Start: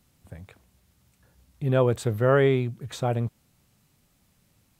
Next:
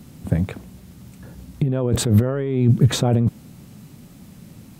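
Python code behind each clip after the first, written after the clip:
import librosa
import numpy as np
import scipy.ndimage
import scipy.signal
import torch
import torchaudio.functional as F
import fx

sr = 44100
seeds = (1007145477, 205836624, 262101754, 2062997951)

y = fx.peak_eq(x, sr, hz=210.0, db=13.0, octaves=2.2)
y = fx.over_compress(y, sr, threshold_db=-24.0, ratio=-1.0)
y = F.gain(torch.from_numpy(y), 6.0).numpy()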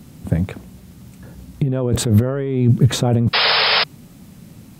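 y = fx.spec_paint(x, sr, seeds[0], shape='noise', start_s=3.33, length_s=0.51, low_hz=410.0, high_hz=5300.0, level_db=-17.0)
y = F.gain(torch.from_numpy(y), 1.5).numpy()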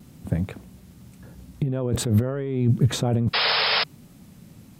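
y = fx.vibrato(x, sr, rate_hz=0.6, depth_cents=12.0)
y = F.gain(torch.from_numpy(y), -6.0).numpy()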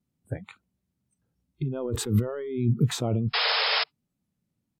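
y = fx.noise_reduce_blind(x, sr, reduce_db=29)
y = fx.record_warp(y, sr, rpm=33.33, depth_cents=100.0)
y = F.gain(torch.from_numpy(y), -3.0).numpy()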